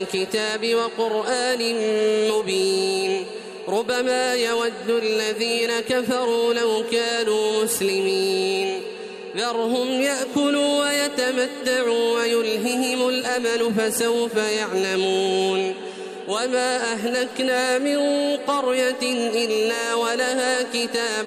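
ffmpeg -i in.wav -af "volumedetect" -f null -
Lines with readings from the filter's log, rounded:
mean_volume: -22.0 dB
max_volume: -10.7 dB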